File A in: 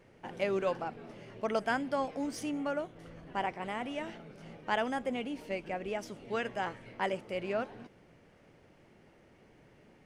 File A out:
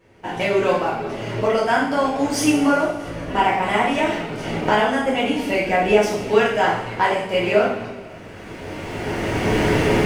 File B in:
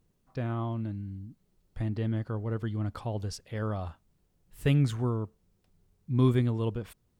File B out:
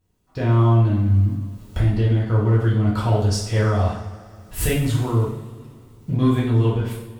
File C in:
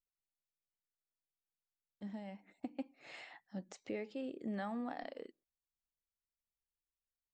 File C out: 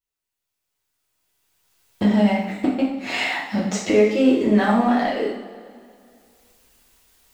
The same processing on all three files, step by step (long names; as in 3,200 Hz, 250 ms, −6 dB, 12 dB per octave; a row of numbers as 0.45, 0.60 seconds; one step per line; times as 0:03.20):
camcorder AGC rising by 14 dB per second
leveller curve on the samples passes 1
coupled-rooms reverb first 0.6 s, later 2.4 s, from −17 dB, DRR −6.5 dB
loudness normalisation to −20 LKFS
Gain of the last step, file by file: +2.5, −2.0, +1.5 decibels